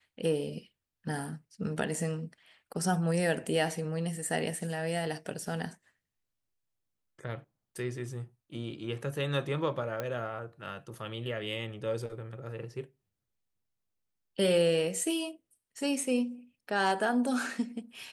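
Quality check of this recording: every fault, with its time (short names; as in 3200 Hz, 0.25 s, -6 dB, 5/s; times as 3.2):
10 pop -20 dBFS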